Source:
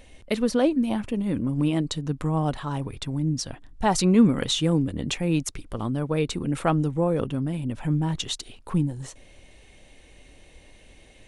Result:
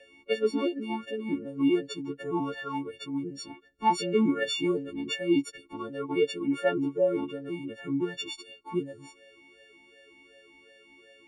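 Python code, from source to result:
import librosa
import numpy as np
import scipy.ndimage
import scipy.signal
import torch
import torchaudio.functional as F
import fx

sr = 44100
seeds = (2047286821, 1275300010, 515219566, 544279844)

y = fx.freq_snap(x, sr, grid_st=4)
y = fx.vowel_sweep(y, sr, vowels='e-u', hz=2.7)
y = y * 10.0 ** (6.5 / 20.0)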